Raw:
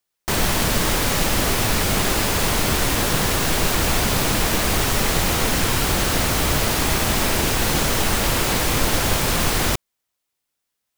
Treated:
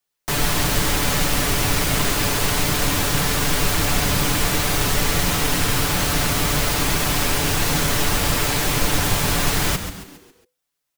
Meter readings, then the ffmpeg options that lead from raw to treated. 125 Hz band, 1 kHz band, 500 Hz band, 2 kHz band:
+0.5 dB, -0.5 dB, -2.0 dB, 0.0 dB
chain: -filter_complex "[0:a]aecho=1:1:6.9:0.67,acrossover=split=310|920|2100[s0][s1][s2][s3];[s1]alimiter=limit=0.0708:level=0:latency=1[s4];[s0][s4][s2][s3]amix=inputs=4:normalize=0,asplit=6[s5][s6][s7][s8][s9][s10];[s6]adelay=137,afreqshift=-100,volume=0.335[s11];[s7]adelay=274,afreqshift=-200,volume=0.151[s12];[s8]adelay=411,afreqshift=-300,volume=0.0676[s13];[s9]adelay=548,afreqshift=-400,volume=0.0305[s14];[s10]adelay=685,afreqshift=-500,volume=0.0138[s15];[s5][s11][s12][s13][s14][s15]amix=inputs=6:normalize=0,volume=0.794"

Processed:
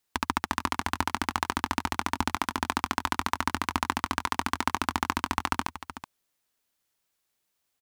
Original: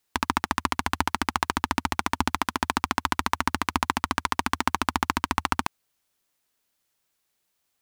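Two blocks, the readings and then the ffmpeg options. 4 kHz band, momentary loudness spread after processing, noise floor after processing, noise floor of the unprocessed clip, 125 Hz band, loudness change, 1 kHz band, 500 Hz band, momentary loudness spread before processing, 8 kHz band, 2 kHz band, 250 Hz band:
-3.0 dB, 2 LU, -79 dBFS, -76 dBFS, -2.5 dB, -3.0 dB, -3.0 dB, -3.0 dB, 2 LU, -3.0 dB, -3.0 dB, -3.0 dB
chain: -af "aecho=1:1:375:0.237,volume=0.708"

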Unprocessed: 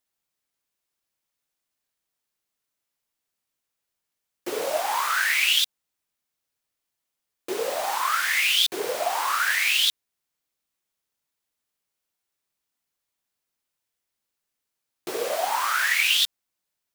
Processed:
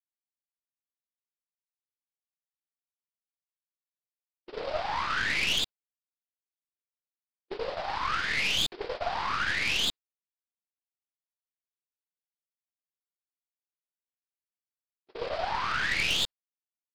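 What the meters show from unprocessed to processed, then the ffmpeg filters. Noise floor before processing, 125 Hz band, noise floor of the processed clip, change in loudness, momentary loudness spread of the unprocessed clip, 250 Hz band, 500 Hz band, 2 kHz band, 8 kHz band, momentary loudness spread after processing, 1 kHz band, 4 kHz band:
-83 dBFS, no reading, under -85 dBFS, -6.5 dB, 11 LU, -2.5 dB, -6.5 dB, -6.0 dB, -10.5 dB, 11 LU, -5.5 dB, -6.5 dB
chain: -af "aresample=11025,aresample=44100,agate=range=0.00355:threshold=0.0398:ratio=16:detection=peak,aeval=exprs='(tanh(10*val(0)+0.7)-tanh(0.7))/10':c=same,volume=0.841"

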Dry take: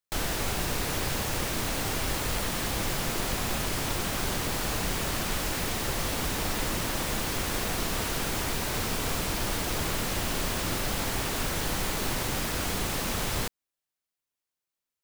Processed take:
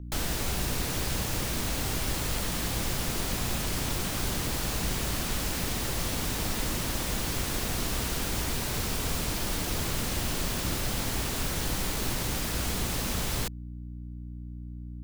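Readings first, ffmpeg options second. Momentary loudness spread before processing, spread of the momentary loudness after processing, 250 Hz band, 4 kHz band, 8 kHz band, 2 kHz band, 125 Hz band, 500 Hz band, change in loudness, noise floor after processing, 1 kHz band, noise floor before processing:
0 LU, 2 LU, -0.5 dB, -1.0 dB, 0.0 dB, -3.0 dB, +1.5 dB, -3.0 dB, -0.5 dB, -39 dBFS, -3.5 dB, under -85 dBFS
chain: -filter_complex "[0:a]aeval=exprs='val(0)+0.0126*(sin(2*PI*60*n/s)+sin(2*PI*2*60*n/s)/2+sin(2*PI*3*60*n/s)/3+sin(2*PI*4*60*n/s)/4+sin(2*PI*5*60*n/s)/5)':c=same,acrossover=split=330|3000[s0][s1][s2];[s1]acompressor=threshold=0.0112:ratio=2[s3];[s0][s3][s2]amix=inputs=3:normalize=0"

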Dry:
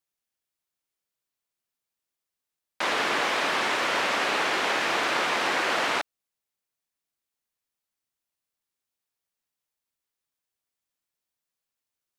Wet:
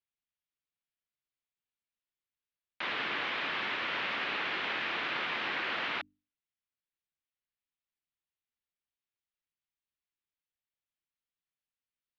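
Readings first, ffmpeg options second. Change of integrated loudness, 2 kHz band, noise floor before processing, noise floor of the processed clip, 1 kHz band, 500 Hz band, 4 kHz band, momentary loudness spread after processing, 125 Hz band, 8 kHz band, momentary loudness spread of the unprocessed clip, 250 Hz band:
-8.0 dB, -7.0 dB, under -85 dBFS, under -85 dBFS, -11.0 dB, -13.5 dB, -7.5 dB, 3 LU, -6.5 dB, under -25 dB, 3 LU, -10.0 dB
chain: -af "lowpass=f=3500:w=0.5412,lowpass=f=3500:w=1.3066,equalizer=f=610:t=o:w=2.5:g=-11,bandreject=f=50:t=h:w=6,bandreject=f=100:t=h:w=6,bandreject=f=150:t=h:w=6,bandreject=f=200:t=h:w=6,bandreject=f=250:t=h:w=6,bandreject=f=300:t=h:w=6,volume=0.708"

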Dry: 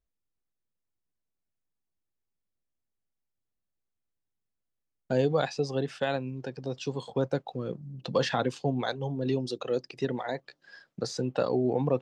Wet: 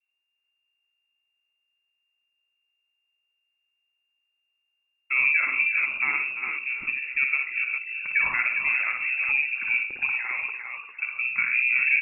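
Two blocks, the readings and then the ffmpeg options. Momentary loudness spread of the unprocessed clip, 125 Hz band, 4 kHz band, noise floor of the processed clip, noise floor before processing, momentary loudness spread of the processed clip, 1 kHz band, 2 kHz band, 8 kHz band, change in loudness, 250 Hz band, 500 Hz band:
10 LU, under -25 dB, under -10 dB, -78 dBFS, -84 dBFS, 8 LU, -2.5 dB, +20.5 dB, under -30 dB, +7.5 dB, under -20 dB, under -25 dB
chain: -filter_complex "[0:a]adynamicequalizer=threshold=0.00501:dfrequency=2200:dqfactor=0.98:tfrequency=2200:tqfactor=0.98:attack=5:release=100:ratio=0.375:range=2.5:mode=cutabove:tftype=bell,asplit=2[s0][s1];[s1]asplit=3[s2][s3][s4];[s2]adelay=344,afreqshift=-56,volume=0.266[s5];[s3]adelay=688,afreqshift=-112,volume=0.0881[s6];[s4]adelay=1032,afreqshift=-168,volume=0.0288[s7];[s5][s6][s7]amix=inputs=3:normalize=0[s8];[s0][s8]amix=inputs=2:normalize=0,lowpass=f=2400:t=q:w=0.5098,lowpass=f=2400:t=q:w=0.6013,lowpass=f=2400:t=q:w=0.9,lowpass=f=2400:t=q:w=2.563,afreqshift=-2800,asplit=2[s9][s10];[s10]aecho=0:1:50|58|83|105|136|404:0.355|0.501|0.211|0.178|0.211|0.501[s11];[s9][s11]amix=inputs=2:normalize=0,volume=1.26"

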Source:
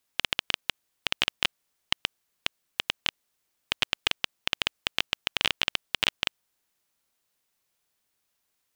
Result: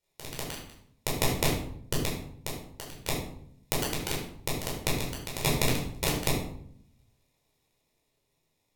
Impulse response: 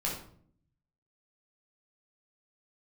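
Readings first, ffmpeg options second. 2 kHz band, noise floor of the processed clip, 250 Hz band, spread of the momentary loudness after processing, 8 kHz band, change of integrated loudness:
-6.0 dB, -77 dBFS, +12.5 dB, 14 LU, +8.0 dB, -2.5 dB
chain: -filter_complex "[0:a]dynaudnorm=f=830:g=5:m=3.76,acrusher=samples=29:mix=1:aa=0.000001,aexciter=amount=3.5:drive=7.5:freq=2200,aeval=exprs='val(0)*sin(2*PI*190*n/s)':c=same[s0];[1:a]atrim=start_sample=2205,asetrate=36603,aresample=44100[s1];[s0][s1]afir=irnorm=-1:irlink=0,volume=0.376"

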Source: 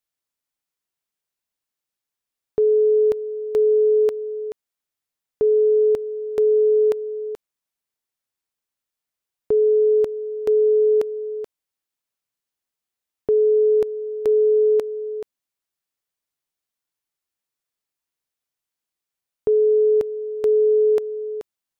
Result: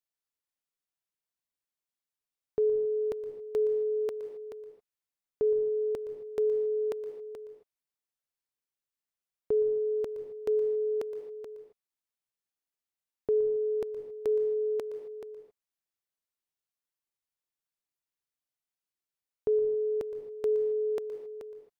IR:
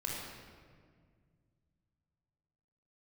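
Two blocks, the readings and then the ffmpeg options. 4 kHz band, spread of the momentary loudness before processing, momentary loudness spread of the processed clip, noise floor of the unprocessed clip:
no reading, 14 LU, 16 LU, under -85 dBFS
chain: -filter_complex "[0:a]asplit=2[s0][s1];[1:a]atrim=start_sample=2205,afade=t=out:st=0.21:d=0.01,atrim=end_sample=9702,adelay=118[s2];[s1][s2]afir=irnorm=-1:irlink=0,volume=0.251[s3];[s0][s3]amix=inputs=2:normalize=0,volume=0.376"

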